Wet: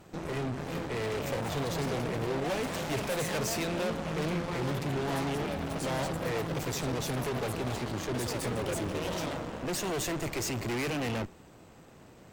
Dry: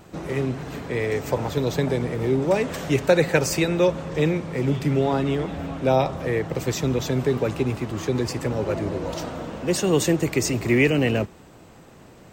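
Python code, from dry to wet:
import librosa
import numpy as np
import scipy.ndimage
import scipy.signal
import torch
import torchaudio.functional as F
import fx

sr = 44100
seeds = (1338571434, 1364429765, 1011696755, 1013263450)

y = np.clip(10.0 ** (24.5 / 20.0) * x, -1.0, 1.0) / 10.0 ** (24.5 / 20.0)
y = fx.echo_pitch(y, sr, ms=461, semitones=4, count=3, db_per_echo=-6.0)
y = fx.cheby_harmonics(y, sr, harmonics=(6,), levels_db=(-15,), full_scale_db=-18.5)
y = y * librosa.db_to_amplitude(-6.0)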